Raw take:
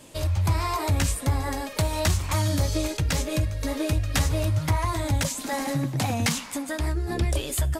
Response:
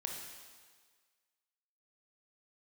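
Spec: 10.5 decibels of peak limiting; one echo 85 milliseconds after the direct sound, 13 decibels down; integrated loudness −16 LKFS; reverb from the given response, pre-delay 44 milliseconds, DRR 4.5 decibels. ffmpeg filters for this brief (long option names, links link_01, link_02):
-filter_complex "[0:a]alimiter=level_in=1dB:limit=-24dB:level=0:latency=1,volume=-1dB,aecho=1:1:85:0.224,asplit=2[link_01][link_02];[1:a]atrim=start_sample=2205,adelay=44[link_03];[link_02][link_03]afir=irnorm=-1:irlink=0,volume=-4.5dB[link_04];[link_01][link_04]amix=inputs=2:normalize=0,volume=15.5dB"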